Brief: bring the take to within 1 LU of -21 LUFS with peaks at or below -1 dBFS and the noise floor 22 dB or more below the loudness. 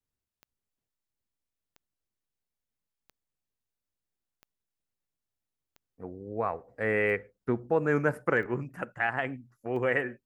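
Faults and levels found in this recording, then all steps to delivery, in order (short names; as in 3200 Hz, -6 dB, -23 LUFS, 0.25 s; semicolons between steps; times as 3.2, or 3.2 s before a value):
clicks 8; loudness -30.0 LUFS; peak -13.0 dBFS; loudness target -21.0 LUFS
-> de-click; gain +9 dB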